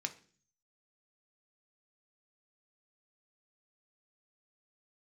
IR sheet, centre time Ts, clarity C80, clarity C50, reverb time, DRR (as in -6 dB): 6 ms, 20.5 dB, 15.5 dB, 0.45 s, 5.0 dB